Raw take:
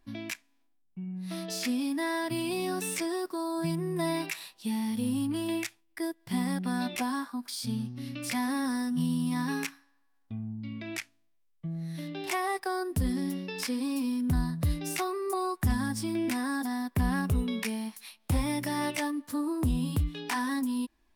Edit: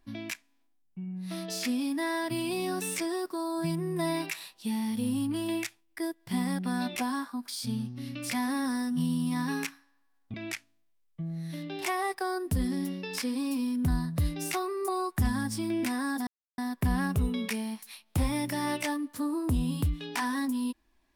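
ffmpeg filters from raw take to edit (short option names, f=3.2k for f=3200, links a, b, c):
-filter_complex "[0:a]asplit=3[a][b][c];[a]atrim=end=10.342[d];[b]atrim=start=10.788:end=16.72,asetpts=PTS-STARTPTS,afade=t=out:st=5.928:d=0.004:c=hsin,apad=pad_dur=0.31[e];[c]atrim=start=16.72,asetpts=PTS-STARTPTS,afade=t=in:d=0.004:c=hsin[f];[e][f]concat=n=2:v=0:a=1[g];[d][g]acrossfade=d=0.004:c1=hsin:c2=hsin"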